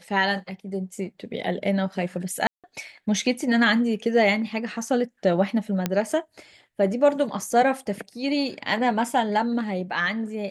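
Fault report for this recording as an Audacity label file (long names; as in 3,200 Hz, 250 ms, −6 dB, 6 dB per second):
2.470000	2.640000	drop-out 167 ms
5.860000	5.860000	click −9 dBFS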